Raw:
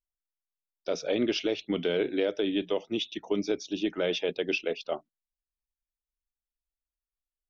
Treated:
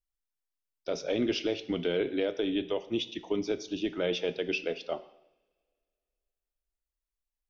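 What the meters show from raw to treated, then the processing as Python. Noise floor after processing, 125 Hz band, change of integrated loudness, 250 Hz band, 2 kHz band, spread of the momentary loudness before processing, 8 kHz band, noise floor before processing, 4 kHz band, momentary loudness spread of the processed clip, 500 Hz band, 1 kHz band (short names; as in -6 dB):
under -85 dBFS, 0.0 dB, -1.5 dB, -1.5 dB, -2.0 dB, 7 LU, n/a, under -85 dBFS, -2.0 dB, 7 LU, -2.0 dB, -2.0 dB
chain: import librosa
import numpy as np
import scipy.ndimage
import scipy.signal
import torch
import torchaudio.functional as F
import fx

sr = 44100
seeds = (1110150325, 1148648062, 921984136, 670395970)

y = fx.low_shelf(x, sr, hz=87.0, db=10.0)
y = fx.rev_double_slope(y, sr, seeds[0], early_s=0.76, late_s=2.5, knee_db=-26, drr_db=11.5)
y = y * 10.0 ** (-2.5 / 20.0)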